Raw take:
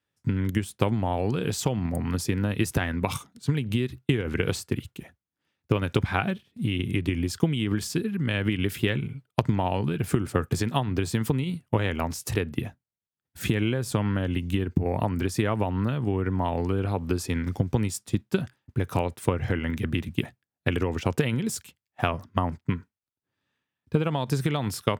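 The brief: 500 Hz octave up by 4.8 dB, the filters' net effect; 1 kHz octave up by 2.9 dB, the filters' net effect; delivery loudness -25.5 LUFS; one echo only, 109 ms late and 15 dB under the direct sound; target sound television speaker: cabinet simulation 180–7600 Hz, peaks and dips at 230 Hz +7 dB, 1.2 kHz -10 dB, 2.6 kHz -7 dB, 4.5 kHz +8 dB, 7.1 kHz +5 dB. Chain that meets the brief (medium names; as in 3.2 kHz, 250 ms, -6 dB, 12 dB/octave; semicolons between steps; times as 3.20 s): cabinet simulation 180–7600 Hz, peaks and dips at 230 Hz +7 dB, 1.2 kHz -10 dB, 2.6 kHz -7 dB, 4.5 kHz +8 dB, 7.1 kHz +5 dB; peaking EQ 500 Hz +5 dB; peaking EQ 1 kHz +4.5 dB; delay 109 ms -15 dB; trim +0.5 dB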